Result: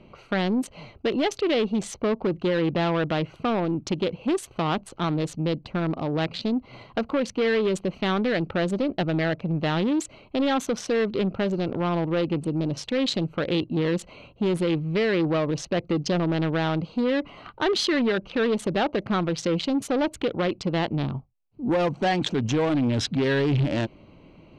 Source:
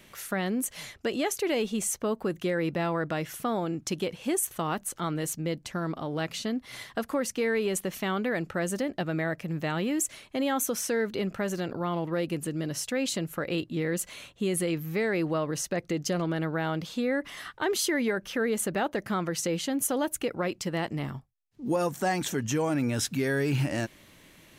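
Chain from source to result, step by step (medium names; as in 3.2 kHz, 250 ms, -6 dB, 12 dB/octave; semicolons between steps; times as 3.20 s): local Wiener filter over 25 samples; saturation -25.5 dBFS, distortion -15 dB; resonant low-pass 3.8 kHz, resonance Q 1.7; trim +8 dB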